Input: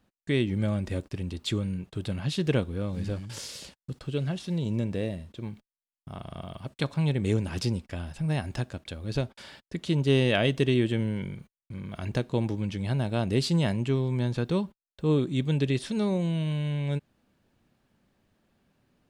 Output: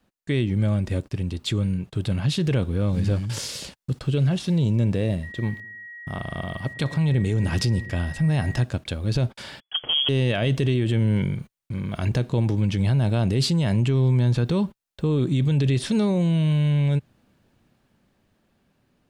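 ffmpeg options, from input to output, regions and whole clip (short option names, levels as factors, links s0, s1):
-filter_complex "[0:a]asettb=1/sr,asplit=3[s0][s1][s2];[s0]atrim=end=5.234[s3];[s1]atrim=start=5.23:end=8.64,asetpts=PTS-STARTPTS,afade=t=in:d=0.004:c=qsin,afade=t=out:st=3.406:d=0.004:c=qsin,aeval=exprs='val(0)+0.00562*sin(2*PI*1900*n/s)':c=same,asplit=2[s4][s5];[s5]adelay=107,lowpass=f=1700:p=1,volume=0.0944,asplit=2[s6][s7];[s7]adelay=107,lowpass=f=1700:p=1,volume=0.44,asplit=2[s8][s9];[s9]adelay=107,lowpass=f=1700:p=1,volume=0.44[s10];[s4][s6][s8][s10]amix=inputs=4:normalize=0,atrim=end_sample=150381[s11];[s2]atrim=start=8.636[s12];[s3][s11]acrossfade=d=0.004:c1=hsin:c2=qsin[s13];[s13][s12]acrossfade=d=0.004:c1=qsin:c2=hsin,asettb=1/sr,asplit=3[s14][s15][s16];[s14]atrim=end=9.604[s17];[s15]atrim=start=9.6:end=10.09,asetpts=PTS-STARTPTS,afade=t=in:d=0.004:c=qsin,afade=t=out:st=0.486:d=0.004:c=qsin,aeval=exprs='clip(val(0),-1,0.0422)':c=same,lowpass=f=2900:t=q:w=0.5098,lowpass=f=2900:t=q:w=0.6013,lowpass=f=2900:t=q:w=0.9,lowpass=f=2900:t=q:w=2.563,afreqshift=-3400[s18];[s16]atrim=start=10.086[s19];[s17][s18]acrossfade=d=0.004:c1=hsin:c2=qsin[s20];[s20][s19]acrossfade=d=0.004:c1=qsin:c2=hsin,adynamicequalizer=threshold=0.01:dfrequency=120:dqfactor=1.6:tfrequency=120:tqfactor=1.6:attack=5:release=100:ratio=0.375:range=3:mode=boostabove:tftype=bell,dynaudnorm=f=520:g=9:m=1.78,alimiter=limit=0.133:level=0:latency=1:release=27,volume=1.41"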